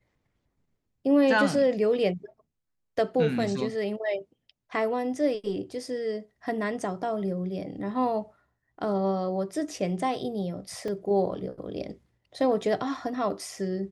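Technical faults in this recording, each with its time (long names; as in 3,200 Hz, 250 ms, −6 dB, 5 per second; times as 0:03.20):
0:10.88: drop-out 3.4 ms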